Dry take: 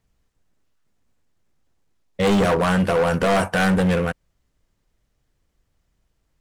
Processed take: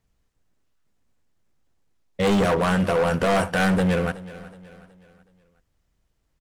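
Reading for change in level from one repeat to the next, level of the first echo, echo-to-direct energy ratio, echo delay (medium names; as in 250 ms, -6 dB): -7.5 dB, -18.0 dB, -17.0 dB, 371 ms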